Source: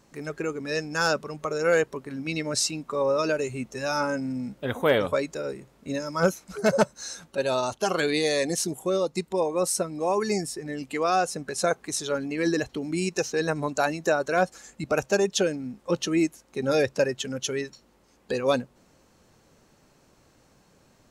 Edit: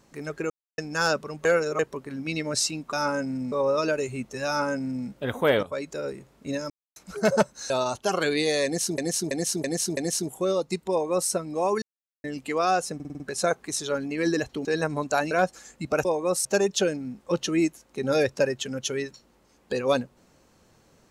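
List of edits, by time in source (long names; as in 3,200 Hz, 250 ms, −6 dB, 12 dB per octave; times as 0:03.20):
0:00.50–0:00.78: silence
0:01.45–0:01.79: reverse
0:03.88–0:04.47: duplicate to 0:02.93
0:05.04–0:05.40: fade in, from −14 dB
0:06.11–0:06.37: silence
0:07.11–0:07.47: remove
0:08.42–0:08.75: repeat, 5 plays
0:09.36–0:09.76: duplicate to 0:15.04
0:10.27–0:10.69: silence
0:11.40: stutter 0.05 s, 6 plays
0:12.85–0:13.31: remove
0:13.97–0:14.30: remove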